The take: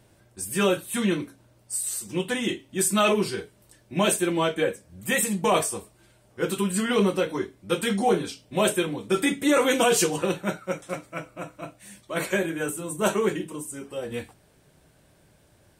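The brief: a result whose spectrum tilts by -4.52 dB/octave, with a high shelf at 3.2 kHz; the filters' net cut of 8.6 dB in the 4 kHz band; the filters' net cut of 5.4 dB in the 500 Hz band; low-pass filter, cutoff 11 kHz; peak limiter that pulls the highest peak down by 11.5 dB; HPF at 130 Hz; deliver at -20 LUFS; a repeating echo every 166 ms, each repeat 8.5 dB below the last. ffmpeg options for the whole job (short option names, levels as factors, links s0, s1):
-af "highpass=130,lowpass=11000,equalizer=f=500:t=o:g=-6.5,highshelf=f=3200:g=-5.5,equalizer=f=4000:t=o:g=-8,alimiter=limit=0.0631:level=0:latency=1,aecho=1:1:166|332|498|664:0.376|0.143|0.0543|0.0206,volume=5.01"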